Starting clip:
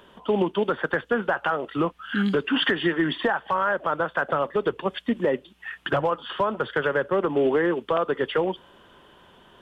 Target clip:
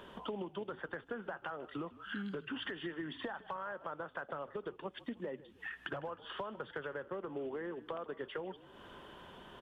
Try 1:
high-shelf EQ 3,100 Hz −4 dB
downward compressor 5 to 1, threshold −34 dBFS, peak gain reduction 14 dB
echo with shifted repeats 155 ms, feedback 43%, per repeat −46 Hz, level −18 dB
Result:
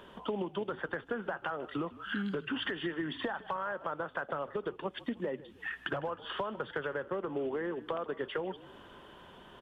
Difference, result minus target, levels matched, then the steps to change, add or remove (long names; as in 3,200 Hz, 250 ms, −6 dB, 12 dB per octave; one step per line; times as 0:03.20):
downward compressor: peak gain reduction −6 dB
change: downward compressor 5 to 1, threshold −41.5 dBFS, peak gain reduction 20 dB